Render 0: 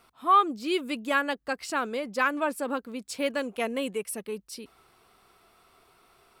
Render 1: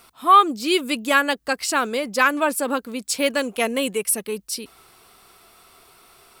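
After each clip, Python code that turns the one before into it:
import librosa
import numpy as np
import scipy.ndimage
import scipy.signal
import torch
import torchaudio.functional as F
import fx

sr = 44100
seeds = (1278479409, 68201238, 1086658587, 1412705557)

y = fx.high_shelf(x, sr, hz=3800.0, db=9.5)
y = F.gain(torch.from_numpy(y), 6.5).numpy()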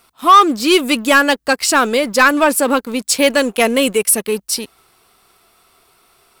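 y = fx.leveller(x, sr, passes=2)
y = F.gain(torch.from_numpy(y), 1.5).numpy()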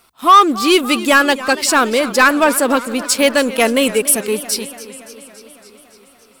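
y = fx.echo_warbled(x, sr, ms=282, feedback_pct=68, rate_hz=2.8, cents=118, wet_db=-16.5)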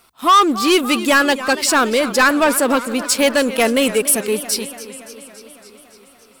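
y = 10.0 ** (-6.5 / 20.0) * np.tanh(x / 10.0 ** (-6.5 / 20.0))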